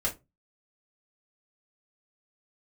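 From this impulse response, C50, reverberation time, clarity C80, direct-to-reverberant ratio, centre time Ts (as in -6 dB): 15.0 dB, 0.20 s, 25.0 dB, -4.5 dB, 14 ms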